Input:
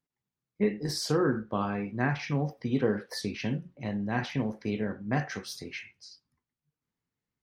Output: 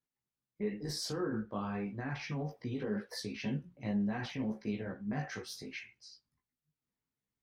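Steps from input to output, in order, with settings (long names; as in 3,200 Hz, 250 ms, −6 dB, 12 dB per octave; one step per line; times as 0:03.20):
brickwall limiter −23 dBFS, peak gain reduction 10 dB
multi-voice chorus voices 4, 0.9 Hz, delay 17 ms, depth 2.7 ms
level −2 dB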